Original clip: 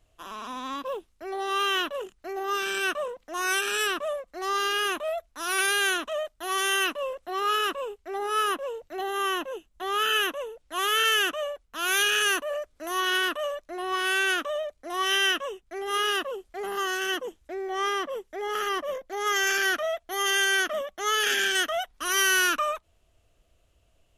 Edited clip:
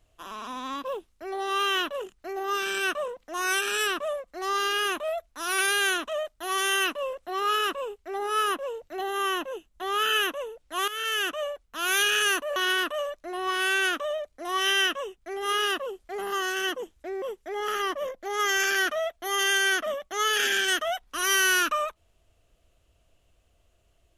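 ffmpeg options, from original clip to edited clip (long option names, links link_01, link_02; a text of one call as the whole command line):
ffmpeg -i in.wav -filter_complex "[0:a]asplit=4[link_01][link_02][link_03][link_04];[link_01]atrim=end=10.88,asetpts=PTS-STARTPTS,afade=type=out:start_time=10.876:duration=0.004:curve=hsin:silence=0.199526[link_05];[link_02]atrim=start=10.88:end=12.562,asetpts=PTS-STARTPTS,afade=type=in:duration=0.55:silence=0.199526[link_06];[link_03]atrim=start=13.008:end=17.672[link_07];[link_04]atrim=start=18.088[link_08];[link_05][link_06]concat=n=2:v=0:a=1[link_09];[link_09][link_07]acrossfade=duration=0.004:curve1=hsin:curve2=hsin[link_10];[link_10][link_08]acrossfade=duration=0.004:curve1=hsin:curve2=hsin" out.wav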